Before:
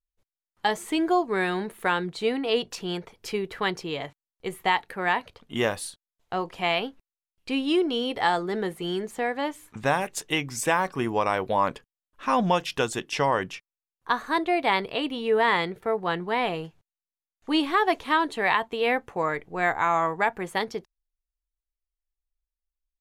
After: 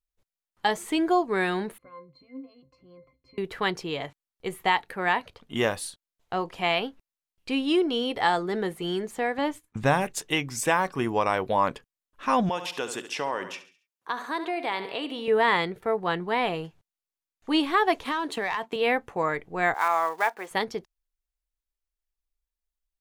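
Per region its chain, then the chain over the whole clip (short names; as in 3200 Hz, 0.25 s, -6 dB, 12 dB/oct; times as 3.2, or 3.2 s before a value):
1.78–3.38 compressor 2:1, threshold -36 dBFS + octave resonator C, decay 0.19 s
9.38–10.14 gate -48 dBFS, range -23 dB + low shelf 240 Hz +8 dB
12.49–15.28 feedback echo 69 ms, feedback 41%, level -14 dB + compressor 2:1, threshold -29 dBFS + HPF 240 Hz
18.05–18.76 HPF 140 Hz 24 dB/oct + sample leveller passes 1 + compressor 5:1, threshold -25 dBFS
19.74–20.51 block floating point 5-bit + HPF 520 Hz + high shelf 4700 Hz -5.5 dB
whole clip: dry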